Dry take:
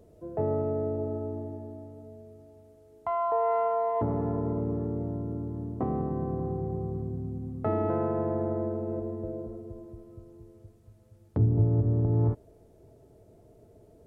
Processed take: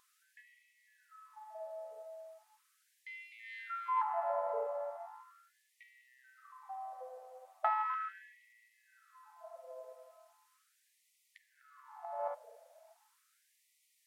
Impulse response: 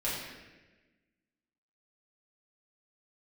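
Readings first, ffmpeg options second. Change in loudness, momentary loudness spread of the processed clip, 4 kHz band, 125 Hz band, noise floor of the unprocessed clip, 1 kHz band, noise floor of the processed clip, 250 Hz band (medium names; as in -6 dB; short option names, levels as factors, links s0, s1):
-10.0 dB, 22 LU, no reading, under -40 dB, -57 dBFS, -4.5 dB, -76 dBFS, under -40 dB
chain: -filter_complex "[0:a]aeval=exprs='0.211*(cos(1*acos(clip(val(0)/0.211,-1,1)))-cos(1*PI/2))+0.00299*(cos(7*acos(clip(val(0)/0.211,-1,1)))-cos(7*PI/2))':c=same,asplit=2[s0][s1];[1:a]atrim=start_sample=2205,afade=t=out:st=0.41:d=0.01,atrim=end_sample=18522[s2];[s1][s2]afir=irnorm=-1:irlink=0,volume=0.0794[s3];[s0][s3]amix=inputs=2:normalize=0,afftfilt=real='re*gte(b*sr/1024,470*pow(1900/470,0.5+0.5*sin(2*PI*0.38*pts/sr)))':imag='im*gte(b*sr/1024,470*pow(1900/470,0.5+0.5*sin(2*PI*0.38*pts/sr)))':win_size=1024:overlap=0.75,volume=1.78"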